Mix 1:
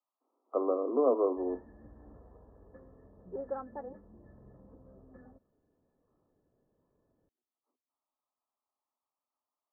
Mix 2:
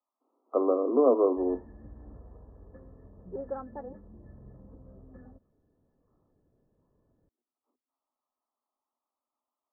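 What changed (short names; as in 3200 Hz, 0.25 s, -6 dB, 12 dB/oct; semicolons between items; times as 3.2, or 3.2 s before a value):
speech +3.0 dB; master: add low shelf 210 Hz +9 dB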